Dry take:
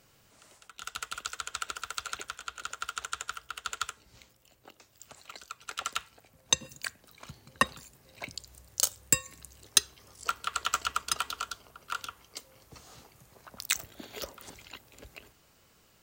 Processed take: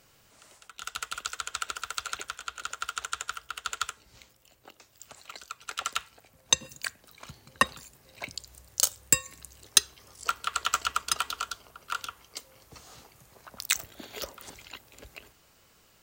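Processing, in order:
parametric band 160 Hz −3 dB 3 octaves
level +2.5 dB

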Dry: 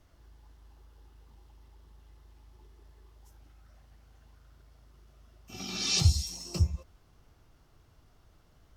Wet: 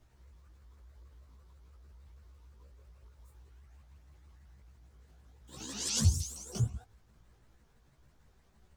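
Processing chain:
pitch shifter swept by a sawtooth +7 semitones, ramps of 159 ms
multi-voice chorus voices 2, 0.49 Hz, delay 16 ms, depth 3 ms

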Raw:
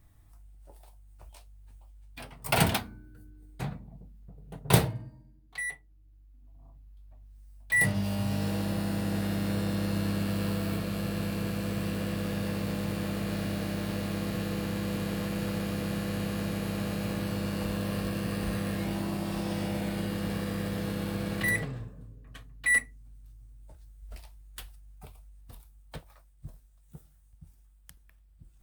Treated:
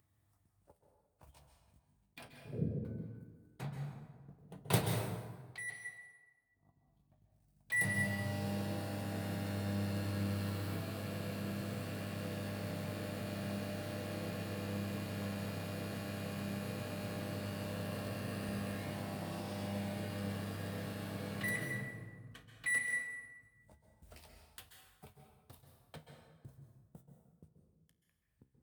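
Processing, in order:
0:02.28–0:02.85: Butterworth low-pass 530 Hz 72 dB per octave
noise gate −47 dBFS, range −40 dB
high-pass filter 84 Hz 24 dB per octave
upward compression, threshold −39 dBFS
flanger 0.2 Hz, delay 9 ms, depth 10 ms, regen +72%
dense smooth reverb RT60 1.4 s, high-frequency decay 0.65×, pre-delay 120 ms, DRR 3 dB
level −5 dB

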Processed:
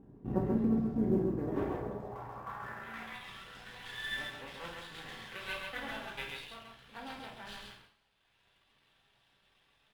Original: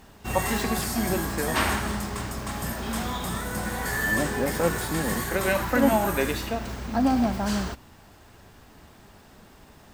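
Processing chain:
reverb reduction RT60 1.3 s
half-wave rectification
band-pass filter sweep 300 Hz → 3,300 Hz, 0:01.37–0:03.38
sample-rate reduction 14,000 Hz, jitter 20%
RIAA equalisation playback
on a send: loudspeakers that aren't time-aligned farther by 17 metres −10 dB, 46 metres −4 dB
on the sum: coupled-rooms reverb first 0.35 s, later 1.7 s, from −22 dB, DRR 0.5 dB

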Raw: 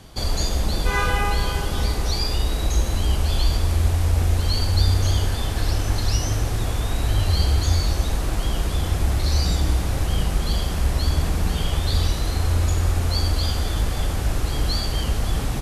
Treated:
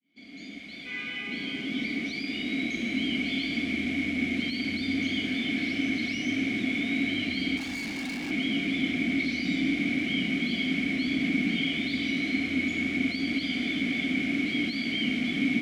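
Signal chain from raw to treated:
fade in at the beginning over 3.47 s
0:00.57–0:01.27: parametric band 260 Hz −12.5 dB 1.3 octaves
mid-hump overdrive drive 28 dB, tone 6,700 Hz, clips at −7 dBFS
formant filter i
hollow resonant body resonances 200/700/2,200 Hz, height 15 dB, ringing for 25 ms
0:07.57–0:08.31: gain into a clipping stage and back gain 26 dB
level −5.5 dB

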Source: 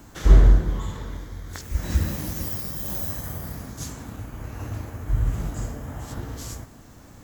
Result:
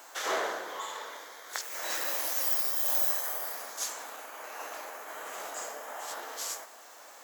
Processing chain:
high-pass filter 560 Hz 24 dB per octave
level +3.5 dB

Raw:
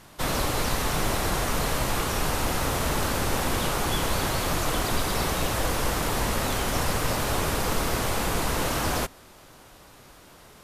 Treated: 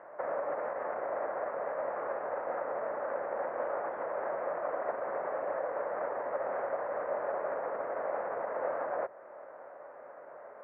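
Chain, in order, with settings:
sub-octave generator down 1 octave, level +2 dB
Butterworth low-pass 1,900 Hz 48 dB per octave
in parallel at +2 dB: downward compressor, threshold −37 dBFS, peak gain reduction 17 dB
on the sum: brickwall limiter −20 dBFS, peak gain reduction 9.5 dB
upward compression, threshold −46 dBFS
high-pass with resonance 570 Hz, resonance Q 4.9
level −9 dB

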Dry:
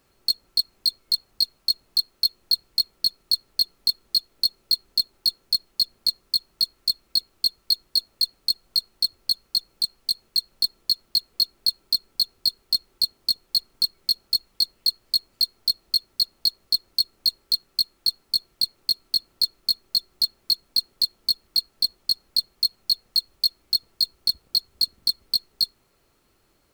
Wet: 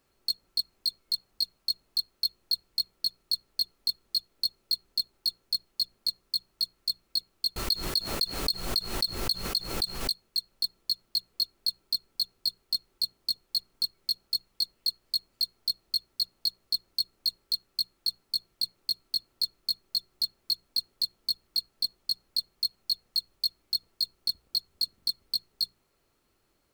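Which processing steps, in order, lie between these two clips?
mains-hum notches 60/120/180 Hz
0:07.56–0:10.23: background raised ahead of every attack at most 67 dB per second
level −7 dB

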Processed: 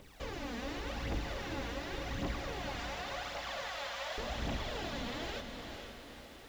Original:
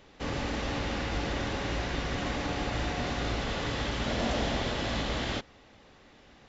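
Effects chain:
0:02.59–0:04.18: elliptic high-pass filter 550 Hz
downward compressor 2.5 to 1, threshold −38 dBFS, peak gain reduction 8.5 dB
bit reduction 10 bits
phase shifter 0.89 Hz, delay 4.4 ms, feedback 65%
on a send: feedback delay with all-pass diffusion 480 ms, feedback 46%, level −5.5 dB
on the sum: level −4.5 dB

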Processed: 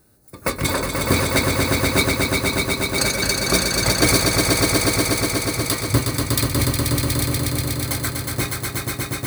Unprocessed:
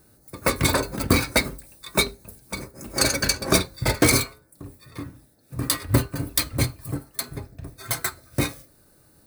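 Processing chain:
echo that builds up and dies away 121 ms, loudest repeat 5, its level −4.5 dB
level −1 dB

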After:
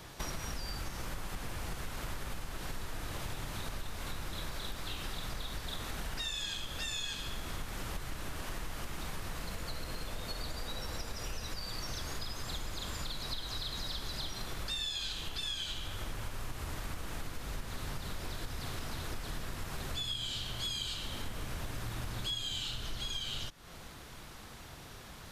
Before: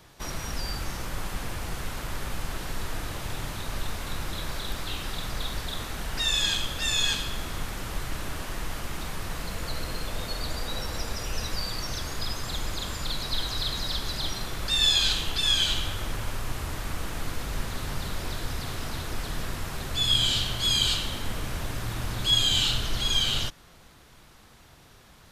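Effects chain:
downward compressor 10 to 1, threshold −39 dBFS, peak gain reduction 21 dB
level +4 dB

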